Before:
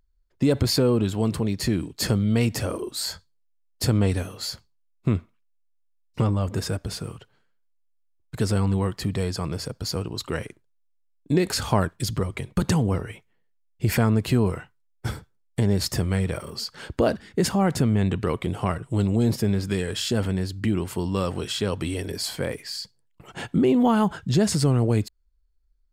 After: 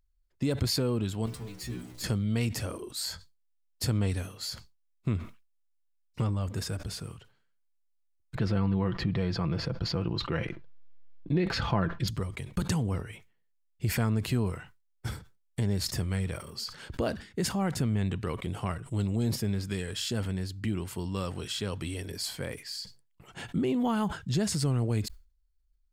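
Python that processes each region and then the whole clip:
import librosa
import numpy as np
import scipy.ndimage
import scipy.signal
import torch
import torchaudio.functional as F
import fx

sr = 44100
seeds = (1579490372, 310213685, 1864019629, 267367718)

y = fx.chain(x, sr, fx.zero_step(step_db=-29.5),
    fx.stiff_resonator(f0_hz=60.0, decay_s=0.38, stiffness=0.002), at=(1.26, 2.04))
y = fx.chain(y, sr, fx.air_absorb(metres=290.0),
    fx.comb(ms=5.9, depth=0.41),
    fx.env_flatten(amount_pct=50), at=(8.35, 12.08))
y = fx.peak_eq(y, sr, hz=490.0, db=-5.0, octaves=2.9)
y = fx.sustainer(y, sr, db_per_s=130.0)
y = y * librosa.db_to_amplitude(-5.0)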